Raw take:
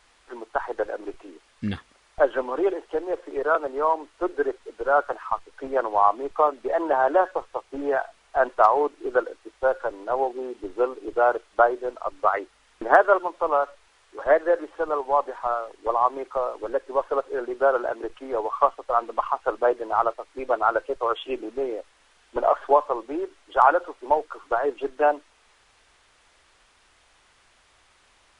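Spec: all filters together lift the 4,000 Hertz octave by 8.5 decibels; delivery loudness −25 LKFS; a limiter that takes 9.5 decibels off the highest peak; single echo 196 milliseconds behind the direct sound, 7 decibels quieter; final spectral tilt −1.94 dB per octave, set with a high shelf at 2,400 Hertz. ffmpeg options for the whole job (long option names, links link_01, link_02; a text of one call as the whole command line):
ffmpeg -i in.wav -af "highshelf=frequency=2400:gain=5.5,equalizer=frequency=4000:width_type=o:gain=6.5,alimiter=limit=-10.5dB:level=0:latency=1,aecho=1:1:196:0.447" out.wav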